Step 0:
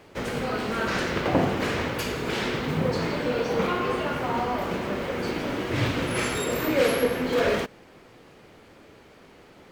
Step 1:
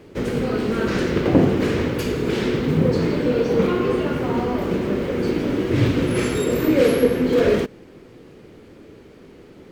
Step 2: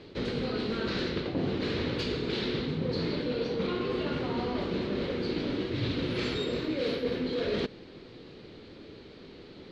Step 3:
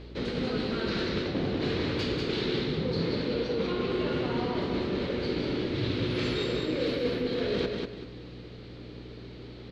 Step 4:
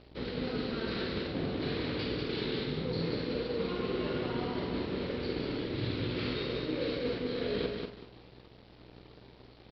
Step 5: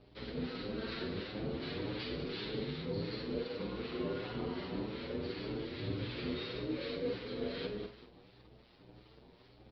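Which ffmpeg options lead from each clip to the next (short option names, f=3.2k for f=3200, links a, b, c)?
-af "lowshelf=f=540:t=q:w=1.5:g=7.5"
-af "lowpass=f=4.1k:t=q:w=4.7,areverse,acompressor=threshold=-24dB:ratio=6,areverse,volume=-4dB"
-filter_complex "[0:a]aeval=exprs='val(0)+0.00631*(sin(2*PI*60*n/s)+sin(2*PI*2*60*n/s)/2+sin(2*PI*3*60*n/s)/3+sin(2*PI*4*60*n/s)/4+sin(2*PI*5*60*n/s)/5)':c=same,asplit=2[a][b];[b]aecho=0:1:193|386|579|772:0.631|0.17|0.046|0.0124[c];[a][c]amix=inputs=2:normalize=0"
-filter_complex "[0:a]aresample=11025,aeval=exprs='sgn(val(0))*max(abs(val(0))-0.00596,0)':c=same,aresample=44100,asplit=2[a][b];[b]adelay=48,volume=-7dB[c];[a][c]amix=inputs=2:normalize=0,volume=-4dB"
-filter_complex "[0:a]acrossover=split=960[a][b];[a]aeval=exprs='val(0)*(1-0.5/2+0.5/2*cos(2*PI*2.7*n/s))':c=same[c];[b]aeval=exprs='val(0)*(1-0.5/2-0.5/2*cos(2*PI*2.7*n/s))':c=same[d];[c][d]amix=inputs=2:normalize=0,asplit=2[e][f];[f]adelay=8,afreqshift=1.7[g];[e][g]amix=inputs=2:normalize=1"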